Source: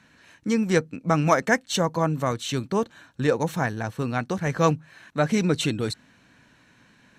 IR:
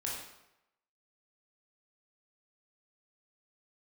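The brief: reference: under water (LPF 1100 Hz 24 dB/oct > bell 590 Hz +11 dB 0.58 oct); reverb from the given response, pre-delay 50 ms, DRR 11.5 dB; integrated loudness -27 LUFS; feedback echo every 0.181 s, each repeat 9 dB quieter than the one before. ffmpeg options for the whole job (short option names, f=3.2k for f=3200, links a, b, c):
-filter_complex "[0:a]aecho=1:1:181|362|543|724:0.355|0.124|0.0435|0.0152,asplit=2[a][b];[1:a]atrim=start_sample=2205,adelay=50[c];[b][c]afir=irnorm=-1:irlink=0,volume=-14dB[d];[a][d]amix=inputs=2:normalize=0,lowpass=f=1.1k:w=0.5412,lowpass=f=1.1k:w=1.3066,equalizer=f=590:t=o:w=0.58:g=11,volume=-6dB"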